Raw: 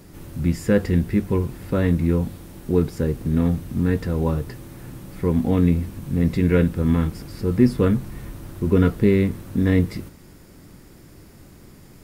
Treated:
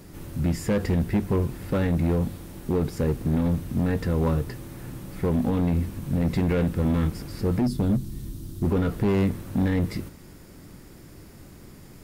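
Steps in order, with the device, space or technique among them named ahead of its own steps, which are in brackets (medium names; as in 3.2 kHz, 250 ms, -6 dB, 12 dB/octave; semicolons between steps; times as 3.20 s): 7.61–8.65 s: high-order bell 1.1 kHz -14 dB 2.8 oct; limiter into clipper (peak limiter -12 dBFS, peak gain reduction 7 dB; hard clipper -18 dBFS, distortion -13 dB)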